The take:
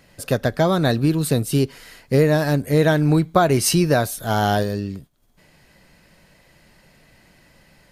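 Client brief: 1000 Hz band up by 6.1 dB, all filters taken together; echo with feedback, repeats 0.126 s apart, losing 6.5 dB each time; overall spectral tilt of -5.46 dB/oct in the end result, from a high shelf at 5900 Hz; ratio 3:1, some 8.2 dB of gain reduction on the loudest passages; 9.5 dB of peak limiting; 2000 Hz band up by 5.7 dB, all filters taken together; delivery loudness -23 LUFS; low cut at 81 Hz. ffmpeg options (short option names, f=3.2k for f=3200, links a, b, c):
-af "highpass=81,equalizer=f=1k:t=o:g=8.5,equalizer=f=2k:t=o:g=4.5,highshelf=f=5.9k:g=-6.5,acompressor=threshold=-17dB:ratio=3,alimiter=limit=-13dB:level=0:latency=1,aecho=1:1:126|252|378|504|630|756:0.473|0.222|0.105|0.0491|0.0231|0.0109,volume=0.5dB"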